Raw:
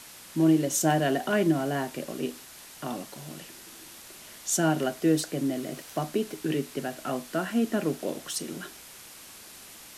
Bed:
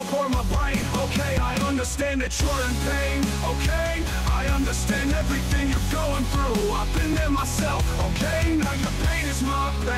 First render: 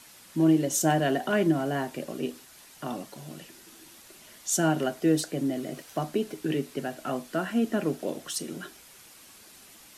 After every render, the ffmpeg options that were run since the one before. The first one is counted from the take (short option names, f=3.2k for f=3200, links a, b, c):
-af "afftdn=nr=6:nf=-48"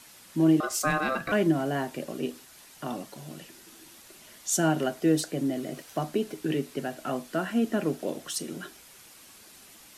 -filter_complex "[0:a]asettb=1/sr,asplit=3[a][b][c];[a]atrim=end=0.604[d];[b]atrim=start=0.6:end=1.32,asetpts=PTS-STARTPTS,afade=t=in:d=0.004:c=qsin,afade=t=out:st=0.716:d=0.004:c=qsin,aeval=exprs='val(0)*sin(2*PI*920*n/s)':c=same[e];[c]atrim=start=1.316[f];[d][e]acrossfade=d=0.004:c1=hsin:c2=qsin[g];[g][f]acrossfade=d=0.004:c1=qsin:c2=hsin"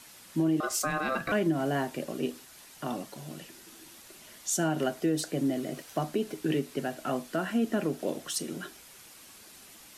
-af "alimiter=limit=-18.5dB:level=0:latency=1:release=132"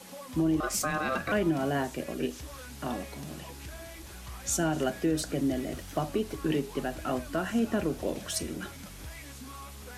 -filter_complex "[1:a]volume=-21dB[a];[0:a][a]amix=inputs=2:normalize=0"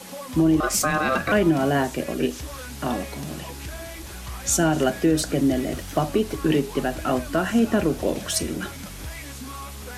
-af "volume=8dB"